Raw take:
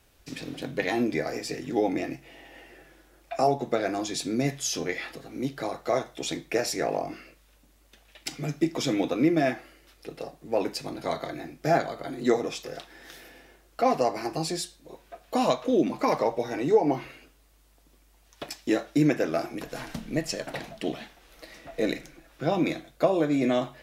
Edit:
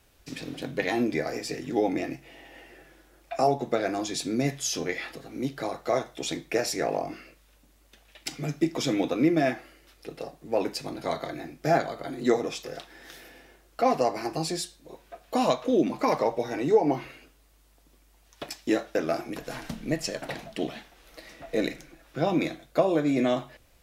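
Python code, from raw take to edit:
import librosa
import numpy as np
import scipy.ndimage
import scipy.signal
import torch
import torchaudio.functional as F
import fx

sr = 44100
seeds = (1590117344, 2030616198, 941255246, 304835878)

y = fx.edit(x, sr, fx.cut(start_s=18.95, length_s=0.25), tone=tone)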